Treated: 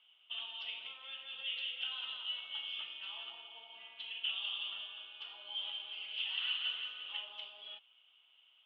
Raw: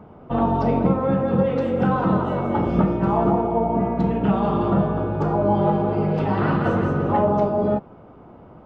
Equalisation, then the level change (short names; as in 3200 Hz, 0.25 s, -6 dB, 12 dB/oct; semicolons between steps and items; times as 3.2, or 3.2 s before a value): Butterworth band-pass 3100 Hz, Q 5.5; +14.0 dB